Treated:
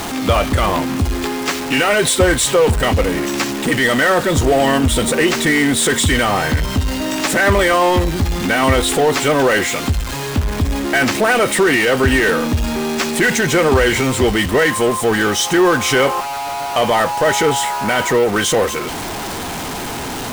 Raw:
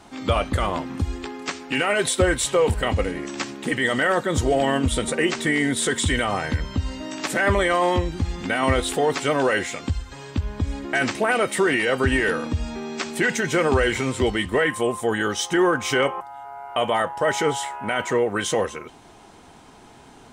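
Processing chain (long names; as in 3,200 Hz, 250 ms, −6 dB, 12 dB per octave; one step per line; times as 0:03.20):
converter with a step at zero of −21.5 dBFS
in parallel at −11.5 dB: bit reduction 4 bits
on the sum: level +2 dB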